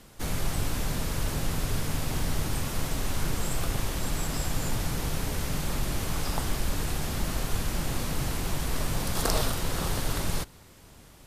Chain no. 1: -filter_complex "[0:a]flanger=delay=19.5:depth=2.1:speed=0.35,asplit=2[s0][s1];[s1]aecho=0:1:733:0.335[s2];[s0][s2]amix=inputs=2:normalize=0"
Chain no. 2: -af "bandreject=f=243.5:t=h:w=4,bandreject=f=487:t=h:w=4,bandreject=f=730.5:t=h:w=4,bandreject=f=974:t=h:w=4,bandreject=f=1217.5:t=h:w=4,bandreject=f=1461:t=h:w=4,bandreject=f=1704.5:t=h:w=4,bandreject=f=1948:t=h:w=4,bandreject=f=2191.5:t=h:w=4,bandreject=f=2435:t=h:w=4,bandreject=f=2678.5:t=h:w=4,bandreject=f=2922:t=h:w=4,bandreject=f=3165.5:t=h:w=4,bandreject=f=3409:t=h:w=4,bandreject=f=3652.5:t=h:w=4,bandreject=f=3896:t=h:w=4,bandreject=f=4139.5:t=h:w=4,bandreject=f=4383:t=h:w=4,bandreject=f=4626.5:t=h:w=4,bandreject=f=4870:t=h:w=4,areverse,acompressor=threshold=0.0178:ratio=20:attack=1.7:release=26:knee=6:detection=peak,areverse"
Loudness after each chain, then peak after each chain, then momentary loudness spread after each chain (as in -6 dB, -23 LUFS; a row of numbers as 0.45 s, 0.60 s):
-34.0 LUFS, -40.5 LUFS; -12.5 dBFS, -26.0 dBFS; 2 LU, 2 LU